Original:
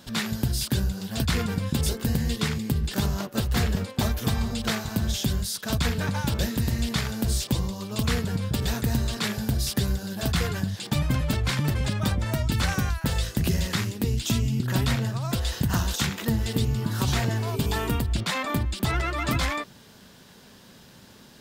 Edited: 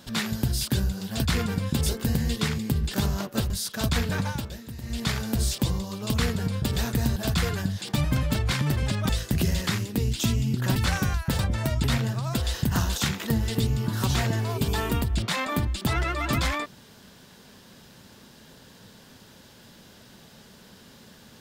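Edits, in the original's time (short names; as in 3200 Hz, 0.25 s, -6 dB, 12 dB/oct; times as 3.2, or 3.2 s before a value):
3.5–5.39 cut
6.12–6.98 dip -13 dB, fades 0.28 s
9.05–10.14 cut
12.07–12.52 swap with 13.15–14.82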